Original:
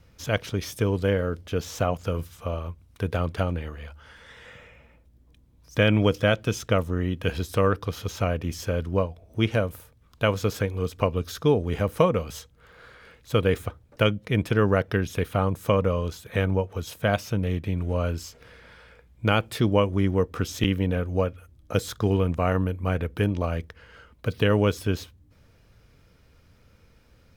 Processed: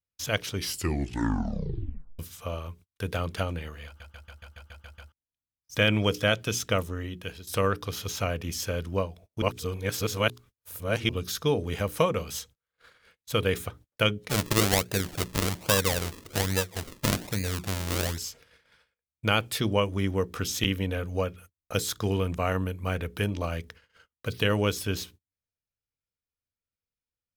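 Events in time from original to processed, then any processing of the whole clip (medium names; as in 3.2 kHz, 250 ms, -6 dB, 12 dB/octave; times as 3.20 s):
0.52 s: tape stop 1.67 s
3.86 s: stutter in place 0.14 s, 9 plays
6.80–7.47 s: fade out, to -16.5 dB
9.42–11.09 s: reverse
14.29–18.18 s: decimation with a swept rate 40× 1.2 Hz
whole clip: treble shelf 2.3 kHz +11 dB; hum notches 60/120/180/240/300/360/420 Hz; gate -44 dBFS, range -37 dB; trim -4.5 dB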